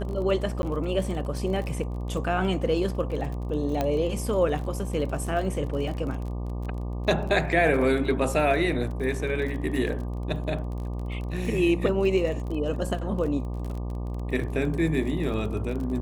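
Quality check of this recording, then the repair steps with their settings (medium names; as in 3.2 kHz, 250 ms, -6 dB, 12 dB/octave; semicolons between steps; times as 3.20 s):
buzz 60 Hz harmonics 20 -31 dBFS
crackle 31 per s -33 dBFS
0.62–0.63 s: dropout 11 ms
3.81 s: pop -13 dBFS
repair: de-click; de-hum 60 Hz, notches 20; interpolate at 0.62 s, 11 ms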